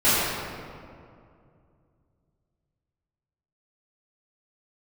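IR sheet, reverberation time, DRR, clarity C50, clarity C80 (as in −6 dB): 2.4 s, −14.5 dB, −4.0 dB, −2.0 dB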